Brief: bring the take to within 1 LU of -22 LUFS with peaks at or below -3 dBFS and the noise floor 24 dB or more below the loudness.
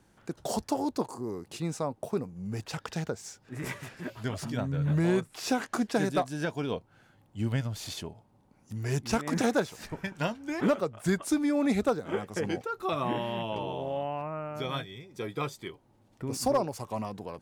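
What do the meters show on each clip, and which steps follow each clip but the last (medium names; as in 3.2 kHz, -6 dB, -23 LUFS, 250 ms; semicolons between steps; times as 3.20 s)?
loudness -32.0 LUFS; peak level -16.0 dBFS; loudness target -22.0 LUFS
-> trim +10 dB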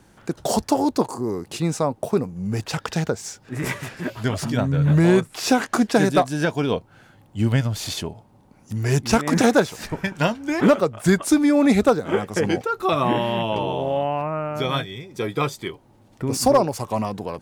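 loudness -22.0 LUFS; peak level -6.0 dBFS; noise floor -54 dBFS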